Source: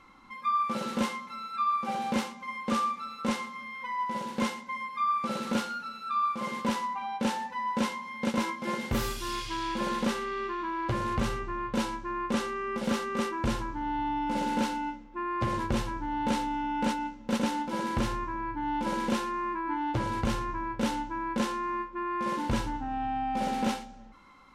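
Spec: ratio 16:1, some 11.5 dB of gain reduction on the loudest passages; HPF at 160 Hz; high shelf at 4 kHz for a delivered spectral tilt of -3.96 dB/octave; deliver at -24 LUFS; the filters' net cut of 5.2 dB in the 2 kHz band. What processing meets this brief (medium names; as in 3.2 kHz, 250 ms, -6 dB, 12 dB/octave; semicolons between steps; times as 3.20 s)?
high-pass 160 Hz; peaking EQ 2 kHz -8 dB; treble shelf 4 kHz +6 dB; compression 16:1, threshold -36 dBFS; trim +16 dB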